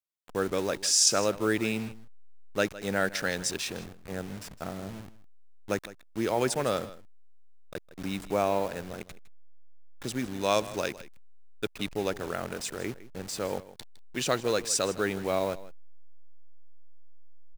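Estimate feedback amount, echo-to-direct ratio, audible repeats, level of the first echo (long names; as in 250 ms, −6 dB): repeats not evenly spaced, −17.0 dB, 1, −17.0 dB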